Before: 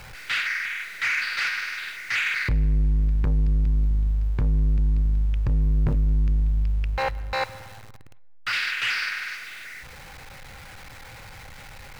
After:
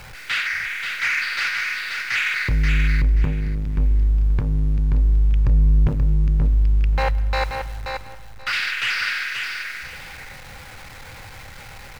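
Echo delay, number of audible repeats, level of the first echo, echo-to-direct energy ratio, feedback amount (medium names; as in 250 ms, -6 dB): 531 ms, 2, -5.5 dB, -5.5 dB, 18%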